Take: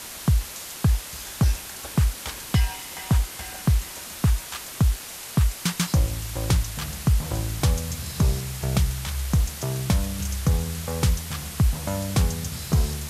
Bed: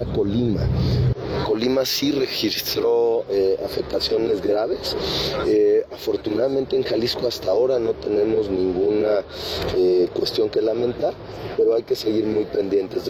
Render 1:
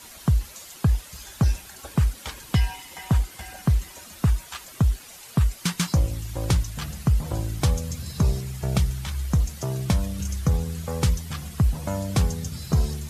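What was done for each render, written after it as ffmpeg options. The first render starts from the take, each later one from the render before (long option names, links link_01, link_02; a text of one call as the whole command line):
ffmpeg -i in.wav -af "afftdn=noise_reduction=10:noise_floor=-38" out.wav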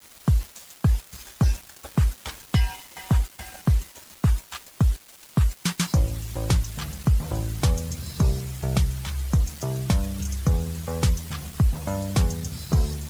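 ffmpeg -i in.wav -af "aeval=exprs='val(0)*gte(abs(val(0)),0.0112)':channel_layout=same" out.wav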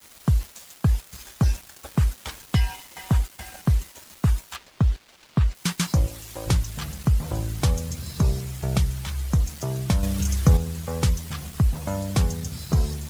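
ffmpeg -i in.wav -filter_complex "[0:a]asettb=1/sr,asplit=3[link_01][link_02][link_03];[link_01]atrim=end=4.564[link_04];[link_02]atrim=start=4.56:end=5.55,asetpts=PTS-STARTPTS,afade=type=in:duration=0.004:curve=qsin,afade=type=out:start_time=0.986:duration=0.004:curve=qsin,acrossover=split=5400[link_05][link_06];[link_06]acompressor=threshold=-60dB:ratio=4:attack=1:release=60[link_07];[link_05][link_07]amix=inputs=2:normalize=0[link_08];[link_03]atrim=start=5.546[link_09];[link_04][link_08]acrossfade=duration=0.004:curve1=hsin:curve2=qsin[link_10];[link_10][link_09]acrossfade=duration=0.004:curve1=qsin:curve2=hsin,asettb=1/sr,asplit=3[link_11][link_12][link_13];[link_11]atrim=end=6.074[link_14];[link_12]atrim=start=6.07:end=6.47,asetpts=PTS-STARTPTS,afade=type=in:duration=0.004:curve=qsin,afade=type=out:start_time=0.396:duration=0.004:curve=qsin,bass=frequency=250:gain=-12,treble=frequency=4000:gain=1[link_15];[link_13]atrim=start=6.466[link_16];[link_14][link_15]acrossfade=duration=0.004:curve1=hsin:curve2=qsin[link_17];[link_17][link_16]acrossfade=duration=0.004:curve1=qsin:curve2=hsin,asplit=3[link_18][link_19][link_20];[link_18]atrim=end=10.032[link_21];[link_19]atrim=start=10.028:end=10.572,asetpts=PTS-STARTPTS,volume=5dB[link_22];[link_20]atrim=start=10.568[link_23];[link_21][link_22]acrossfade=duration=0.004:curve1=hsin:curve2=hsin[link_24];[link_24][link_23]acrossfade=duration=0.004:curve1=hsin:curve2=hsin" out.wav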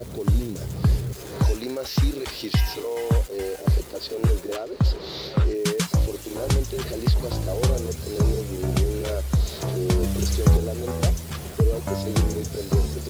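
ffmpeg -i in.wav -i bed.wav -filter_complex "[1:a]volume=-10.5dB[link_01];[0:a][link_01]amix=inputs=2:normalize=0" out.wav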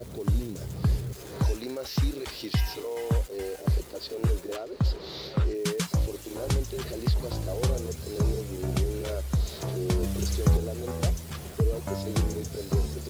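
ffmpeg -i in.wav -af "volume=-5dB" out.wav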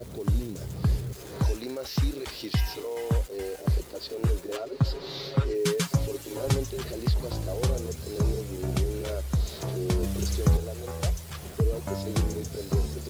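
ffmpeg -i in.wav -filter_complex "[0:a]asettb=1/sr,asplit=3[link_01][link_02][link_03];[link_01]atrim=end=4.534[link_04];[link_02]atrim=start=4.53:end=6.7,asetpts=PTS-STARTPTS,afade=type=in:duration=0.004:curve=qsin,afade=type=out:start_time=2.166:duration=0.004:curve=qsin,aecho=1:1:7.3:0.73,atrim=end_sample=95697[link_05];[link_03]atrim=start=6.696[link_06];[link_04][link_05]acrossfade=duration=0.004:curve1=hsin:curve2=qsin[link_07];[link_07][link_06]acrossfade=duration=0.004:curve1=qsin:curve2=hsin,asettb=1/sr,asplit=3[link_08][link_09][link_10];[link_08]atrim=end=10.564[link_11];[link_09]atrim=start=10.56:end=11.43,asetpts=PTS-STARTPTS,afade=type=in:duration=0.004:curve=qsin,afade=type=out:start_time=0.866:duration=0.004:curve=qsin,equalizer=frequency=250:width_type=o:width=1:gain=-10.5[link_12];[link_10]atrim=start=11.426[link_13];[link_11][link_12]acrossfade=duration=0.004:curve1=hsin:curve2=qsin[link_14];[link_14][link_13]acrossfade=duration=0.004:curve1=qsin:curve2=hsin" out.wav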